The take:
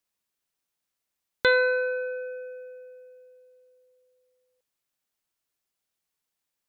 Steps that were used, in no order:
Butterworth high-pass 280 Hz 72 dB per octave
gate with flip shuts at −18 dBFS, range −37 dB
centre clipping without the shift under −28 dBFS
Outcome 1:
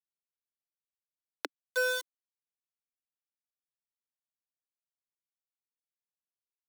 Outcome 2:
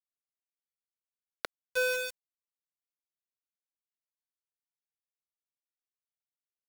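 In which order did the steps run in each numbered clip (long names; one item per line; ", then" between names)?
gate with flip, then centre clipping without the shift, then Butterworth high-pass
gate with flip, then Butterworth high-pass, then centre clipping without the shift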